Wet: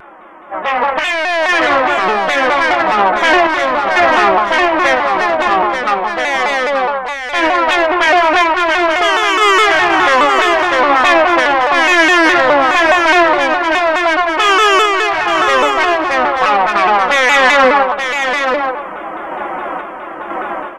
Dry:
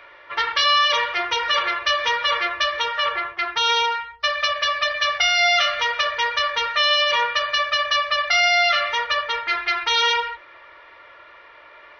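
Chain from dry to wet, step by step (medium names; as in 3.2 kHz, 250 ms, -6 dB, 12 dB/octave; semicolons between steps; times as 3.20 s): tone controls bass -4 dB, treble +8 dB; band-stop 450 Hz, Q 12; in parallel at -1 dB: compression, threshold -32 dBFS, peak gain reduction 18.5 dB; on the sum: peak limiter -13.5 dBFS, peak gain reduction 9.5 dB; level rider gain up to 15 dB; saturation -8 dBFS, distortion -14 dB; random-step tremolo; on a send: delay 508 ms -6 dB; on the sum: speed mistake 78 rpm record played at 45 rpm; vibrato with a chosen wave saw down 4.8 Hz, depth 160 cents; trim +4.5 dB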